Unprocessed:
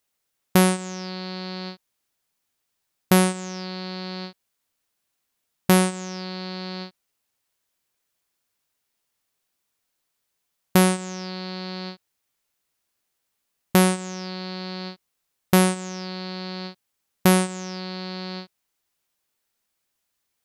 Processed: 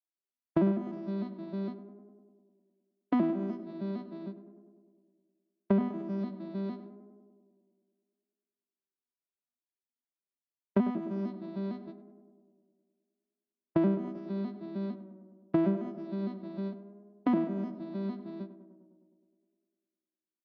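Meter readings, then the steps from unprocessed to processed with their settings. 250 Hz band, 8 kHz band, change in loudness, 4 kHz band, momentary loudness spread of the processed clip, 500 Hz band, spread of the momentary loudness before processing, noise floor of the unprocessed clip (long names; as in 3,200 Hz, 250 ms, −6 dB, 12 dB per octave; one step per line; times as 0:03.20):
−6.0 dB, below −40 dB, −9.0 dB, below −25 dB, 16 LU, −8.5 dB, 16 LU, −78 dBFS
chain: vocoder with an arpeggio as carrier minor triad, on E3, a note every 152 ms
low-pass filter 4,500 Hz 24 dB per octave
noise gate −36 dBFS, range −16 dB
high-pass filter 130 Hz
spectral tilt −2 dB per octave
comb filter 3.1 ms, depth 80%
downward compressor 4 to 1, threshold −21 dBFS, peak gain reduction 10 dB
tape delay 102 ms, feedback 80%, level −11 dB, low-pass 1,300 Hz
level −3 dB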